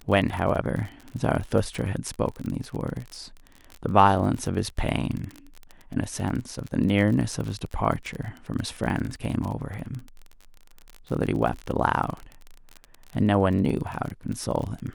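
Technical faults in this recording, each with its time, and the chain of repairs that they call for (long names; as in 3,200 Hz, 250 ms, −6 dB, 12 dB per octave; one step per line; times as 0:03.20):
surface crackle 33 per second −30 dBFS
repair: click removal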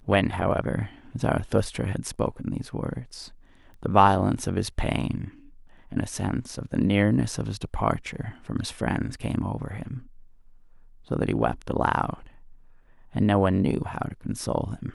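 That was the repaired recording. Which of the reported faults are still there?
none of them is left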